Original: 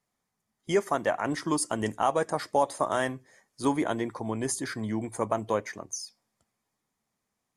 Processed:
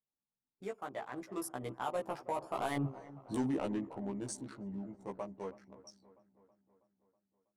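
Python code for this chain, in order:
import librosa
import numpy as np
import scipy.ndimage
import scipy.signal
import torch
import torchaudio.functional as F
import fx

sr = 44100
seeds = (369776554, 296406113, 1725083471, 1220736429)

p1 = fx.wiener(x, sr, points=25)
p2 = fx.doppler_pass(p1, sr, speed_mps=35, closest_m=3.4, pass_at_s=2.94)
p3 = fx.dynamic_eq(p2, sr, hz=1700.0, q=0.9, threshold_db=-52.0, ratio=4.0, max_db=-4)
p4 = fx.over_compress(p3, sr, threshold_db=-44.0, ratio=-0.5)
p5 = p3 + (p4 * librosa.db_to_amplitude(1.5))
p6 = 10.0 ** (-29.5 / 20.0) * np.tanh(p5 / 10.0 ** (-29.5 / 20.0))
p7 = fx.doubler(p6, sr, ms=15.0, db=-2)
p8 = p7 + fx.echo_wet_lowpass(p7, sr, ms=323, feedback_pct=59, hz=1600.0, wet_db=-17.5, dry=0)
y = p8 * librosa.db_to_amplitude(2.5)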